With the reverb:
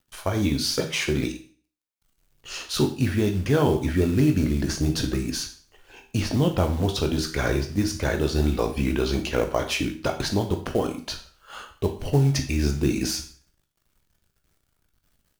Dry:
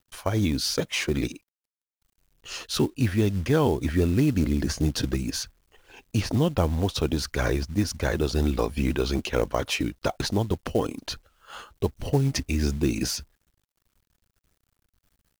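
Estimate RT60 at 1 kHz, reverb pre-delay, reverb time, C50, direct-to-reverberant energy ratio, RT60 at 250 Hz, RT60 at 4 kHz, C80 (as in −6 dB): 0.45 s, 13 ms, 0.45 s, 10.0 dB, 3.5 dB, 0.45 s, 0.40 s, 15.0 dB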